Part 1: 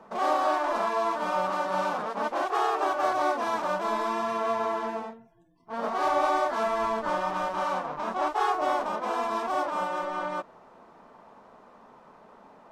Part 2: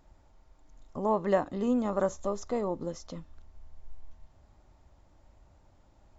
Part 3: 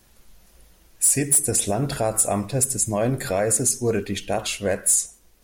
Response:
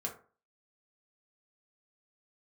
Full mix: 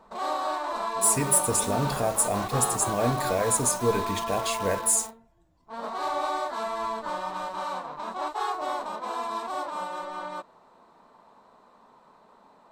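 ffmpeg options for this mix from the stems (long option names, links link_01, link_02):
-filter_complex "[0:a]equalizer=frequency=1000:width_type=o:width=0.33:gain=5,equalizer=frequency=4000:width_type=o:width=0.33:gain=11,equalizer=frequency=8000:width_type=o:width=0.33:gain=10,equalizer=frequency=12500:width_type=o:width=0.33:gain=7,volume=-5.5dB[link_01];[1:a]volume=-9.5dB[link_02];[2:a]acrusher=bits=5:mix=0:aa=0.000001,volume=-7dB,asplit=2[link_03][link_04];[link_04]volume=-6.5dB[link_05];[3:a]atrim=start_sample=2205[link_06];[link_05][link_06]afir=irnorm=-1:irlink=0[link_07];[link_01][link_02][link_03][link_07]amix=inputs=4:normalize=0"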